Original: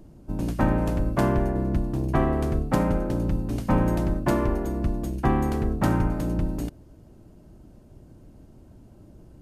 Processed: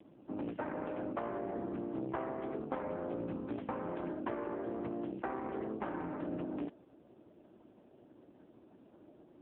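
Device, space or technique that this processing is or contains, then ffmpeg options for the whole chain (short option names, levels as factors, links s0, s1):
voicemail: -af "highpass=320,lowpass=2900,acompressor=threshold=0.0224:ratio=8" -ar 8000 -c:a libopencore_amrnb -b:a 5150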